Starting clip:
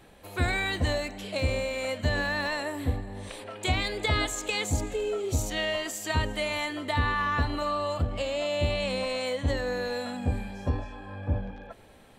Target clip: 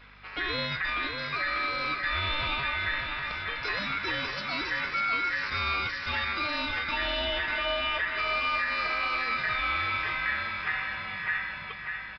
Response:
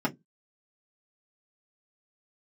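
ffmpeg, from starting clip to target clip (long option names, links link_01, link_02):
-filter_complex "[0:a]highpass=82,bandreject=frequency=2700:width=5.2,alimiter=level_in=0.5dB:limit=-24dB:level=0:latency=1,volume=-0.5dB,aeval=exprs='val(0)*sin(2*PI*1800*n/s)':channel_layout=same,aeval=exprs='val(0)+0.000891*(sin(2*PI*50*n/s)+sin(2*PI*2*50*n/s)/2+sin(2*PI*3*50*n/s)/3+sin(2*PI*4*50*n/s)/4+sin(2*PI*5*50*n/s)/5)':channel_layout=same,asplit=2[link_01][link_02];[link_02]aecho=0:1:594|1188|1782|2376|2970|3564|4158:0.501|0.286|0.163|0.0928|0.0529|0.0302|0.0172[link_03];[link_01][link_03]amix=inputs=2:normalize=0,aresample=11025,aresample=44100,volume=5dB"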